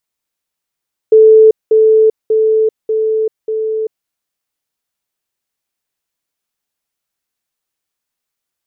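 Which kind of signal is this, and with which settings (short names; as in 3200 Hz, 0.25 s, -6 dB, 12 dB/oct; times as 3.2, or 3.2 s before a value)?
level ladder 438 Hz -2 dBFS, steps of -3 dB, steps 5, 0.39 s 0.20 s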